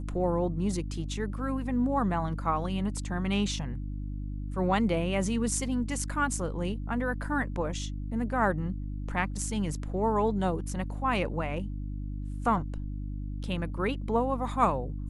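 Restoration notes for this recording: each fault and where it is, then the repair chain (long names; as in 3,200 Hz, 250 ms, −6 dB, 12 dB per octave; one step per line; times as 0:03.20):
mains hum 50 Hz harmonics 6 −35 dBFS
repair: hum removal 50 Hz, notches 6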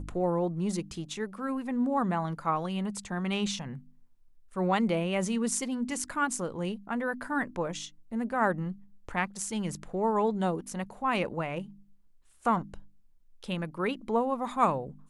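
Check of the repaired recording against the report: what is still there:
none of them is left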